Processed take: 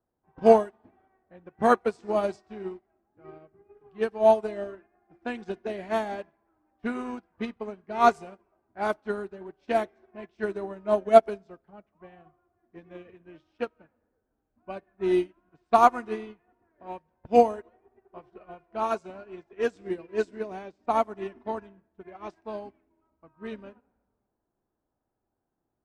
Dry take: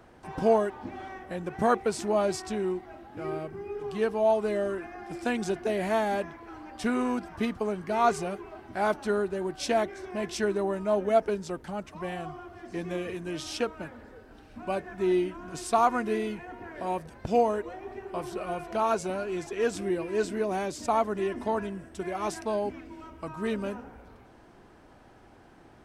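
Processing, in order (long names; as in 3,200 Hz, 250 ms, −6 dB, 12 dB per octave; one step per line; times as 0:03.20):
low-pass that shuts in the quiet parts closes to 1,100 Hz, open at −20.5 dBFS
on a send at −15 dB: convolution reverb RT60 1.8 s, pre-delay 10 ms
on the sum: expander for the loud parts 2.5 to 1, over −42 dBFS
level +9 dB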